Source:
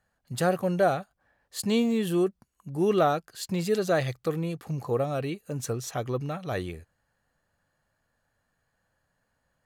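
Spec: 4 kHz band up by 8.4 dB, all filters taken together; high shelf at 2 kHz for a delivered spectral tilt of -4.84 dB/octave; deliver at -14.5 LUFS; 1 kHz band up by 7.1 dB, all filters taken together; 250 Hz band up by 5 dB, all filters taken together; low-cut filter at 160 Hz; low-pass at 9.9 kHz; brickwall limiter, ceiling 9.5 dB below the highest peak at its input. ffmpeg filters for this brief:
-af "highpass=160,lowpass=9900,equalizer=f=250:t=o:g=7.5,equalizer=f=1000:t=o:g=9,highshelf=f=2000:g=5.5,equalizer=f=4000:t=o:g=4.5,volume=3.98,alimiter=limit=0.794:level=0:latency=1"

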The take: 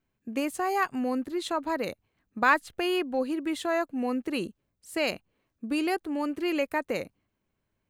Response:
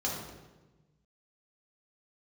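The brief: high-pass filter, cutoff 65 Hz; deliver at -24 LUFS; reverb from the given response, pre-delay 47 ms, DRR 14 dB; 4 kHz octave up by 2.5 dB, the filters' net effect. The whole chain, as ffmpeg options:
-filter_complex "[0:a]highpass=65,equalizer=f=4000:t=o:g=3.5,asplit=2[s0][s1];[1:a]atrim=start_sample=2205,adelay=47[s2];[s1][s2]afir=irnorm=-1:irlink=0,volume=0.0944[s3];[s0][s3]amix=inputs=2:normalize=0,volume=1.78"

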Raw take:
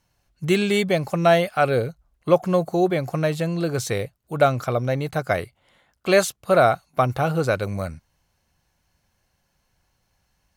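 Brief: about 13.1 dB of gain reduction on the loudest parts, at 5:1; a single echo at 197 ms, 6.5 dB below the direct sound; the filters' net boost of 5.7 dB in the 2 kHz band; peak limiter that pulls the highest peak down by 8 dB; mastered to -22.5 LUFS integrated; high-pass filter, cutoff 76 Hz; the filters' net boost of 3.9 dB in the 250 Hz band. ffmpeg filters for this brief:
-af "highpass=76,equalizer=f=250:t=o:g=6.5,equalizer=f=2000:t=o:g=7.5,acompressor=threshold=0.0631:ratio=5,alimiter=limit=0.133:level=0:latency=1,aecho=1:1:197:0.473,volume=2.11"

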